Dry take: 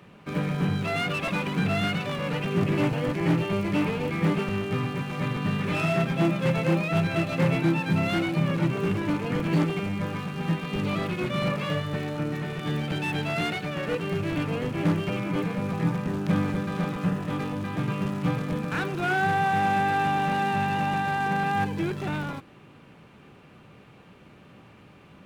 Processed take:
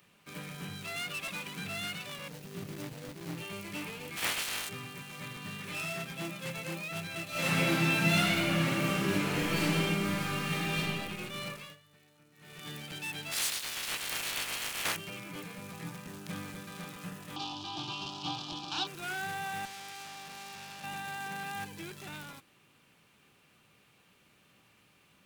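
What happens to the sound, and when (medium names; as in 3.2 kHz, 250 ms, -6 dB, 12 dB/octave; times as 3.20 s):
2.28–3.37 s: median filter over 41 samples
4.16–4.68 s: spectral peaks clipped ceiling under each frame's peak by 28 dB
7.30–10.79 s: reverb throw, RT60 1.9 s, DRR -11.5 dB
11.50–12.63 s: dip -18.5 dB, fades 0.27 s
13.31–14.95 s: spectral peaks clipped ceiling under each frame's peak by 28 dB
17.36–18.87 s: FFT filter 140 Hz 0 dB, 220 Hz -8 dB, 340 Hz +13 dB, 480 Hz -12 dB, 790 Hz +15 dB, 1.2 kHz +4 dB, 2 kHz -14 dB, 3 kHz +14 dB, 5.1 kHz +13 dB, 11 kHz -20 dB
19.65–20.84 s: valve stage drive 32 dB, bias 0.6
whole clip: pre-emphasis filter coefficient 0.9; trim +2 dB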